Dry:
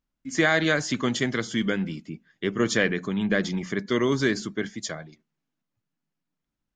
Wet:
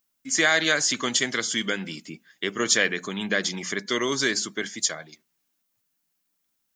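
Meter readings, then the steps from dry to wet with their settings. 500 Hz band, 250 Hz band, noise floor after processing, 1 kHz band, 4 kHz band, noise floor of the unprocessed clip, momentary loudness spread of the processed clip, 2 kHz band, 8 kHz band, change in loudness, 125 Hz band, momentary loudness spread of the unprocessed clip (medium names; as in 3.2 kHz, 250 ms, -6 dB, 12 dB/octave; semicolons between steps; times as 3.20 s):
-2.5 dB, -5.5 dB, -76 dBFS, +0.5 dB, +7.0 dB, -84 dBFS, 11 LU, +2.5 dB, +11.0 dB, +1.5 dB, -9.0 dB, 11 LU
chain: RIAA curve recording; in parallel at -2 dB: compression, threshold -34 dBFS, peak gain reduction 17 dB; on the sum: trim -1 dB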